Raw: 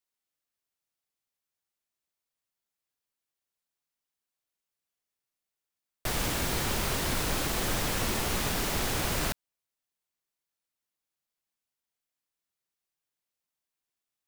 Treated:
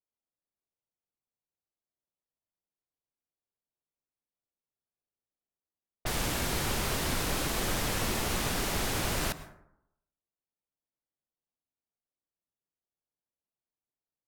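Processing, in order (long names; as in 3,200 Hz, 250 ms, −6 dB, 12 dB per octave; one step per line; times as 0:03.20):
low-pass that shuts in the quiet parts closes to 740 Hz, open at −31 dBFS
dense smooth reverb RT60 0.79 s, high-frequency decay 0.4×, pre-delay 95 ms, DRR 14.5 dB
level −1 dB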